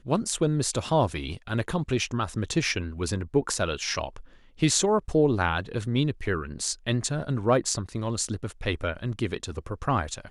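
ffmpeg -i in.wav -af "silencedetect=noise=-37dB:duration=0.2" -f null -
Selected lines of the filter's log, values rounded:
silence_start: 4.20
silence_end: 4.59 | silence_duration: 0.39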